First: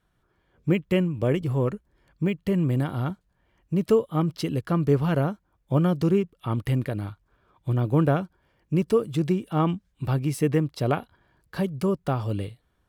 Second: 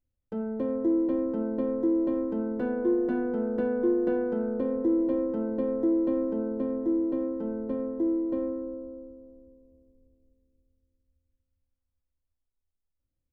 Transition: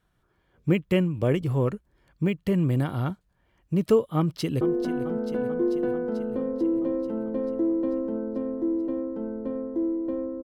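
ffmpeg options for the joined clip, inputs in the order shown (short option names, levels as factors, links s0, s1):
-filter_complex "[0:a]apad=whole_dur=10.43,atrim=end=10.43,atrim=end=4.612[s0];[1:a]atrim=start=2.848:end=8.67[s1];[s0][s1]acrossfade=d=0.004:c1=hsin:c2=hsin,asplit=2[s2][s3];[s3]afade=t=in:st=4.17:d=0.01,afade=t=out:st=4.61:d=0.01,aecho=0:1:440|880|1320|1760|2200|2640|3080|3520|3960|4400:0.251189|0.175832|0.123082|0.0861577|0.0603104|0.0422173|0.0295521|0.0206865|0.0144805|0.0101364[s4];[s2][s4]amix=inputs=2:normalize=0"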